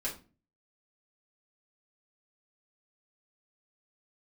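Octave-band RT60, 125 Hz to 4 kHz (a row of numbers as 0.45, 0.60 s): 0.60, 0.55, 0.40, 0.30, 0.30, 0.25 s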